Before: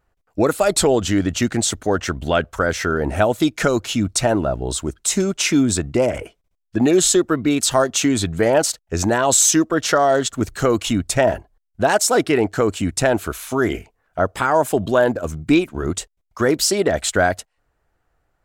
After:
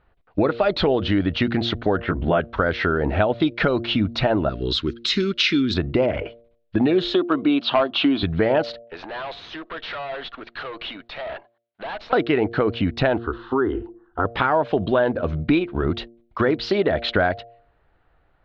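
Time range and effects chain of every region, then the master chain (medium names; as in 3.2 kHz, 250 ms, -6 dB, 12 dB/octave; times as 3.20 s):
1.97–2.40 s: low-pass 1.7 kHz + doubling 18 ms -4 dB
4.49–5.74 s: Butterworth band-stop 710 Hz, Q 0.87 + tone controls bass -6 dB, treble +15 dB
7.14–8.23 s: cabinet simulation 250–4900 Hz, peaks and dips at 280 Hz +5 dB, 460 Hz -5 dB, 700 Hz +5 dB, 1.1 kHz +5 dB, 1.9 kHz -8 dB, 3 kHz +5 dB + hard clipper -8 dBFS
8.82–12.13 s: compression, threshold -21 dBFS + band-pass 680–5500 Hz + valve stage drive 34 dB, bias 0.5
13.18–14.25 s: low-pass 2.3 kHz + static phaser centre 620 Hz, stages 6 + de-hum 166.9 Hz, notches 4
whole clip: steep low-pass 4.1 kHz 48 dB/octave; de-hum 116.7 Hz, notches 6; compression 2.5:1, threshold -26 dBFS; trim +6 dB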